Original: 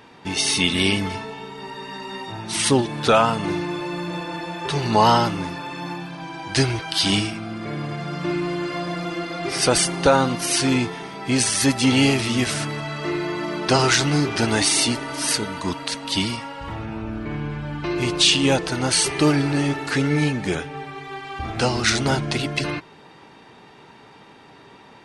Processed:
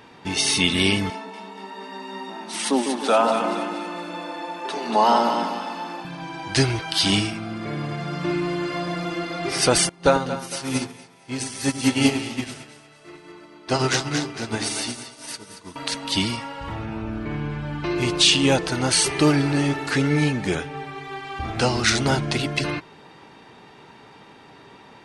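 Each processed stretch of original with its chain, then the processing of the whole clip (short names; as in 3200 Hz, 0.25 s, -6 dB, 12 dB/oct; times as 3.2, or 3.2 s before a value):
1.1–6.05 rippled Chebyshev high-pass 180 Hz, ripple 6 dB + split-band echo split 1200 Hz, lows 0.153 s, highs 0.235 s, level -5.5 dB
9.89–15.76 split-band echo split 460 Hz, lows 98 ms, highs 0.228 s, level -5 dB + upward expander 2.5:1, over -27 dBFS
whole clip: dry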